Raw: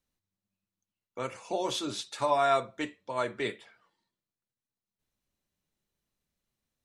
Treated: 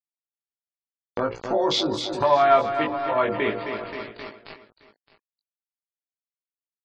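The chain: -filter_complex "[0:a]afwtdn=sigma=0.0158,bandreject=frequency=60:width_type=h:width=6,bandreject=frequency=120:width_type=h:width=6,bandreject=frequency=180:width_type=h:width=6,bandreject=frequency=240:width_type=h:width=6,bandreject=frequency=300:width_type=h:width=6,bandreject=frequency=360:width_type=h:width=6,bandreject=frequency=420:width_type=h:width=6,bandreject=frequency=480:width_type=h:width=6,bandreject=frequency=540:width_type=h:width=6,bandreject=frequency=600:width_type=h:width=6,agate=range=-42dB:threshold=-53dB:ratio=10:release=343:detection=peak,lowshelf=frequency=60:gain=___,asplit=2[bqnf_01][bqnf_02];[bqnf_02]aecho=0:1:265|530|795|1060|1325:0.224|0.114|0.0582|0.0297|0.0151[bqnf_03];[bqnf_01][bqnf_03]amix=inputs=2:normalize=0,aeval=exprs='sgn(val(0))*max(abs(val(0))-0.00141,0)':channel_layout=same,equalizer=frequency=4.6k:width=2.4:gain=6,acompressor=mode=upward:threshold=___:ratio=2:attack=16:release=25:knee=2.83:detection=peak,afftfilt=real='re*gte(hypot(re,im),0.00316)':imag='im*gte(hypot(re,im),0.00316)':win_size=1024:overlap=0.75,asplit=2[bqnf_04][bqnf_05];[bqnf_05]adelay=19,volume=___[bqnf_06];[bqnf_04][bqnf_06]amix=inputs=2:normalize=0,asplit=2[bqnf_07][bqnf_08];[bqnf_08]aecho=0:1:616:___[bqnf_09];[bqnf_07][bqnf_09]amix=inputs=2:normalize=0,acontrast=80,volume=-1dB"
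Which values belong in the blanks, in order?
10.5, -30dB, -3dB, 0.133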